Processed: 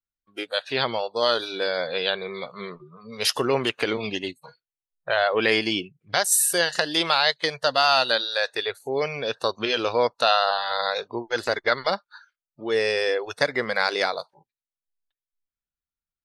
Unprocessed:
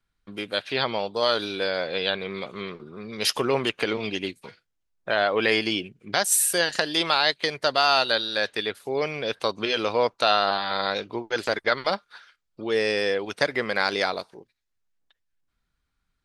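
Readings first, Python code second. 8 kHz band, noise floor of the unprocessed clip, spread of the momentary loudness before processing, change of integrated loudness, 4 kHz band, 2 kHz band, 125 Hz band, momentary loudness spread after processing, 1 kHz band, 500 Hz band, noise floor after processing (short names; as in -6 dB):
+1.0 dB, -78 dBFS, 12 LU, +1.0 dB, +1.0 dB, +1.0 dB, 0.0 dB, 11 LU, +1.0 dB, +1.0 dB, under -85 dBFS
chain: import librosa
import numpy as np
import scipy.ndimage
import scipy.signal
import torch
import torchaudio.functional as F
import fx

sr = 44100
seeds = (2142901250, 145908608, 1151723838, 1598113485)

y = fx.noise_reduce_blind(x, sr, reduce_db=22)
y = y * librosa.db_to_amplitude(1.0)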